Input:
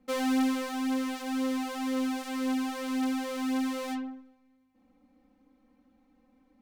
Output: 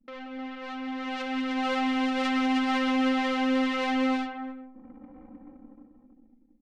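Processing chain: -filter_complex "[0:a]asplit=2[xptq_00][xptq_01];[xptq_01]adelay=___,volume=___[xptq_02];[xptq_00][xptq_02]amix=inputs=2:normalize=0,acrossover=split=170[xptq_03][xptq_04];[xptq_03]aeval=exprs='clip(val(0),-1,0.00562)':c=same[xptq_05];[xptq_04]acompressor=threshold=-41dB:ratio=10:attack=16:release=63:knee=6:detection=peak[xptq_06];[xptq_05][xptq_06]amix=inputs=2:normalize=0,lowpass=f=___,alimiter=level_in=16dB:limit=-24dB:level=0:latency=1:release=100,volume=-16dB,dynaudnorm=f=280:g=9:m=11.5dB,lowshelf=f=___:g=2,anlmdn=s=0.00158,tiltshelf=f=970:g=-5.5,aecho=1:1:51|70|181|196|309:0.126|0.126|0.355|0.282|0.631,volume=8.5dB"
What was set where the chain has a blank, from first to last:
13, -9.5dB, 2.8k, 330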